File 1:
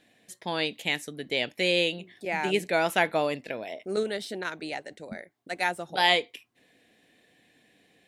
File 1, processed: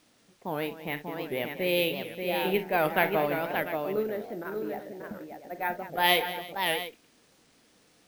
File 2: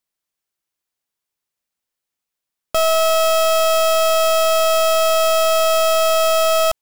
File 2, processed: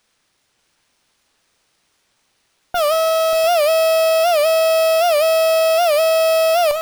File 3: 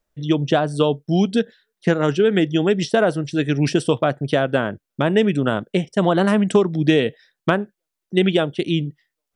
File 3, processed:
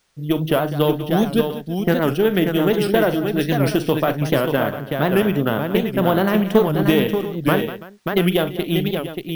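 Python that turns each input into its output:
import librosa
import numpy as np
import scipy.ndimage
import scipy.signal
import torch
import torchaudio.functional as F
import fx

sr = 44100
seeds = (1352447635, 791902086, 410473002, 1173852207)

p1 = fx.cheby_harmonics(x, sr, harmonics=(6,), levels_db=(-26,), full_scale_db=-1.0)
p2 = fx.env_lowpass(p1, sr, base_hz=680.0, full_db=-13.0)
p3 = fx.quant_dither(p2, sr, seeds[0], bits=10, dither='triangular')
p4 = p3 + fx.echo_multitap(p3, sr, ms=(42, 62, 194, 331, 584, 695), db=(-12.5, -18.5, -14.5, -20.0, -5.5, -13.0), dry=0)
p5 = np.repeat(scipy.signal.resample_poly(p4, 1, 3), 3)[:len(p4)]
p6 = fx.record_warp(p5, sr, rpm=78.0, depth_cents=160.0)
y = p6 * librosa.db_to_amplitude(-1.5)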